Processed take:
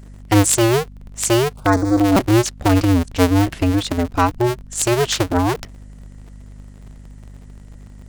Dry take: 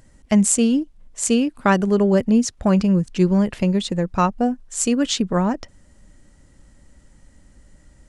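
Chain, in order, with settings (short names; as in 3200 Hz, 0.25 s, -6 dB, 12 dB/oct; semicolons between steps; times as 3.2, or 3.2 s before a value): cycle switcher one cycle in 2, inverted; 1.54–1.99 envelope phaser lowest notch 270 Hz, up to 2900 Hz; buzz 50 Hz, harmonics 5, -41 dBFS -6 dB/oct; gain +2 dB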